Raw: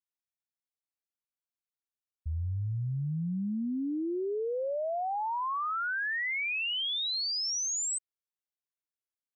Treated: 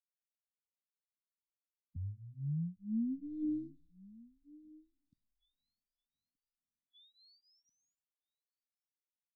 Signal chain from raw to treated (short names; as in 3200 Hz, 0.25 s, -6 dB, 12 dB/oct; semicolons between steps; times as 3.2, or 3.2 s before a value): spectral limiter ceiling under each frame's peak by 23 dB; Doppler pass-by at 3.45, 46 m/s, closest 6.2 m; LFO low-pass saw up 0.39 Hz 800–1600 Hz; added harmonics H 2 -13 dB, 3 -16 dB, 6 -26 dB, 7 -8 dB, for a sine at -29.5 dBFS; brick-wall FIR band-stop 300–3400 Hz; outdoor echo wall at 210 m, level -22 dB; photocell phaser 1.9 Hz; gain +10 dB